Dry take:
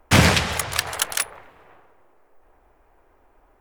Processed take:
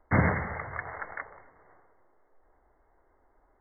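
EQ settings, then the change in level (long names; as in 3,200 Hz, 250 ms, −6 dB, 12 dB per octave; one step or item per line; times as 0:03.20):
linear-phase brick-wall low-pass 2,200 Hz
−8.0 dB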